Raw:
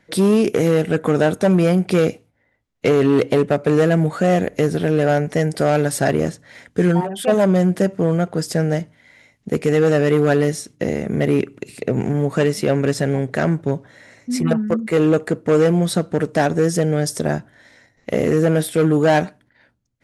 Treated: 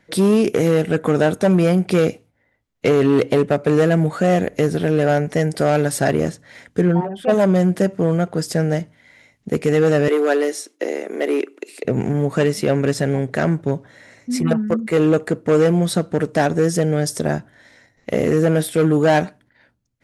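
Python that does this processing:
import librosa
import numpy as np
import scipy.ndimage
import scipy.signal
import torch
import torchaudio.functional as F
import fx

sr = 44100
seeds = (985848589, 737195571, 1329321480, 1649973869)

y = fx.lowpass(x, sr, hz=1300.0, slope=6, at=(6.81, 7.29))
y = fx.steep_highpass(y, sr, hz=300.0, slope=36, at=(10.08, 11.85))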